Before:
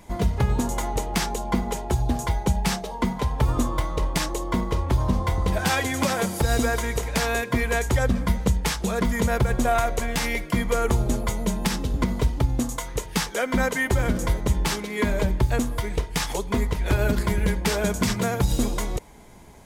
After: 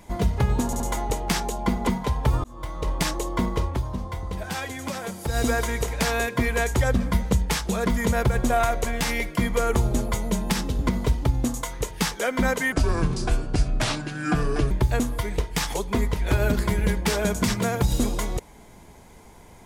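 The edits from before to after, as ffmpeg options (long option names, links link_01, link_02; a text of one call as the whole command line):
ffmpeg -i in.wav -filter_complex "[0:a]asplit=9[link_01][link_02][link_03][link_04][link_05][link_06][link_07][link_08][link_09];[link_01]atrim=end=0.732[link_10];[link_02]atrim=start=0.658:end=0.732[link_11];[link_03]atrim=start=0.658:end=1.732[link_12];[link_04]atrim=start=3.018:end=3.59,asetpts=PTS-STARTPTS,afade=type=out:start_time=0.568:duration=0.004:curve=hsin[link_13];[link_05]atrim=start=3.59:end=5.01,asetpts=PTS-STARTPTS,afade=type=in:duration=0.54,afade=type=out:start_time=1.16:duration=0.26:silence=0.398107[link_14];[link_06]atrim=start=5.01:end=6.37,asetpts=PTS-STARTPTS,volume=-8dB[link_15];[link_07]atrim=start=6.37:end=13.874,asetpts=PTS-STARTPTS,afade=type=in:duration=0.26:silence=0.398107[link_16];[link_08]atrim=start=13.87:end=15.3,asetpts=PTS-STARTPTS,asetrate=31752,aresample=44100[link_17];[link_09]atrim=start=15.296[link_18];[link_10][link_11]acrossfade=duration=0.004:curve1=hsin:curve2=hsin[link_19];[link_19][link_12]acrossfade=duration=0.004:curve1=hsin:curve2=hsin[link_20];[link_13][link_14][link_15][link_16]concat=n=4:v=0:a=1[link_21];[link_20][link_21]acrossfade=duration=0.004:curve1=hsin:curve2=hsin[link_22];[link_22][link_17]acrossfade=duration=0.004:curve1=hsin:curve2=hsin[link_23];[link_23][link_18]acrossfade=duration=0.004:curve1=hsin:curve2=hsin" out.wav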